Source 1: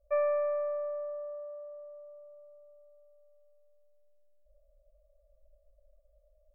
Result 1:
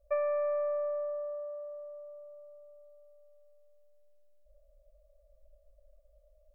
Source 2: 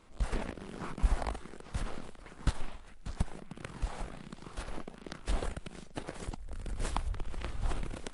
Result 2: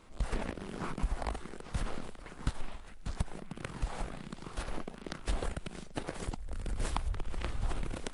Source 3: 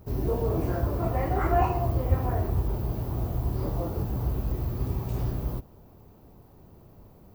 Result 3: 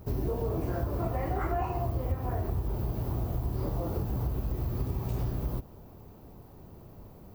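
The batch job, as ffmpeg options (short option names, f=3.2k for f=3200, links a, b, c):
-af "acompressor=threshold=-30dB:ratio=5,volume=2.5dB"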